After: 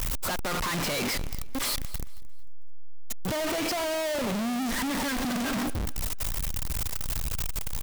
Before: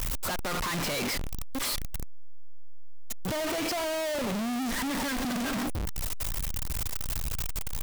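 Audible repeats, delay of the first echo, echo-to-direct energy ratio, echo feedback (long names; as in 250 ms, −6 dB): 2, 224 ms, −18.5 dB, 31%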